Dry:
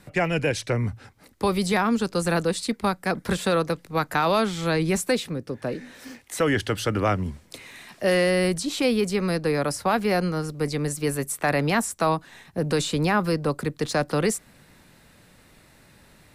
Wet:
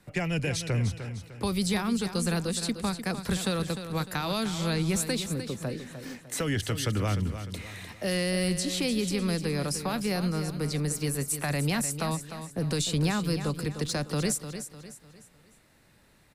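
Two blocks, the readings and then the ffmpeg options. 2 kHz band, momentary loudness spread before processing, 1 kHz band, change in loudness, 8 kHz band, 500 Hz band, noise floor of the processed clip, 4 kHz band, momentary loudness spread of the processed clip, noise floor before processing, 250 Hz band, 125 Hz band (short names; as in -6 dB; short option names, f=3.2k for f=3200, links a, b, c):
-7.0 dB, 9 LU, -10.0 dB, -5.0 dB, +0.5 dB, -9.0 dB, -61 dBFS, -1.0 dB, 10 LU, -55 dBFS, -3.5 dB, -1.0 dB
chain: -filter_complex "[0:a]acrossover=split=210|3000[a][b][c];[b]acompressor=threshold=-37dB:ratio=2.5[d];[a][d][c]amix=inputs=3:normalize=0,agate=range=-8dB:threshold=-45dB:ratio=16:detection=peak,aecho=1:1:302|604|906|1208:0.316|0.126|0.0506|0.0202"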